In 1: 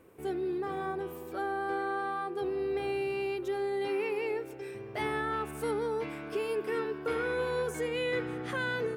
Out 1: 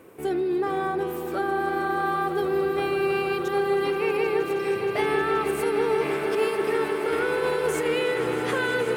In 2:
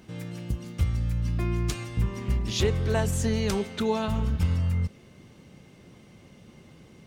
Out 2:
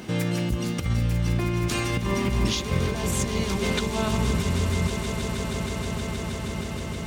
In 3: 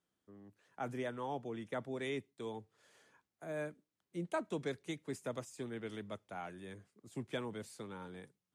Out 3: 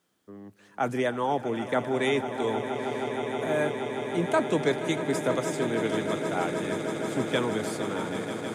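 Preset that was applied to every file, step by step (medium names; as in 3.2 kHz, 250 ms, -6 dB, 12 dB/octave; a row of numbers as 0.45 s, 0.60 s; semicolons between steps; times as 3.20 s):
high-pass 150 Hz 6 dB/octave; compressor with a negative ratio -33 dBFS, ratio -0.5; peak limiter -26.5 dBFS; on a send: echo with a slow build-up 158 ms, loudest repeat 8, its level -13 dB; on the sum: peak normalisation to -12 dBFS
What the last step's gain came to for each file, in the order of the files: +8.5 dB, +10.5 dB, +13.5 dB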